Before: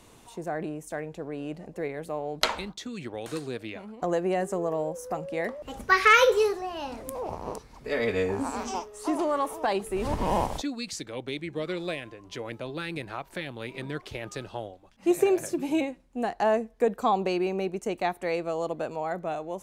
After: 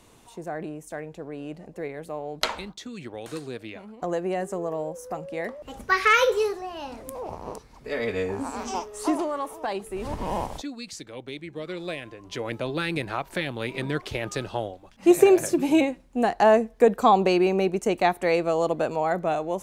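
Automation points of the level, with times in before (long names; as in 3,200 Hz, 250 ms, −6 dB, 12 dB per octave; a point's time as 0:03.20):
0:08.54 −1 dB
0:09.02 +6.5 dB
0:09.31 −3 dB
0:11.63 −3 dB
0:12.58 +6.5 dB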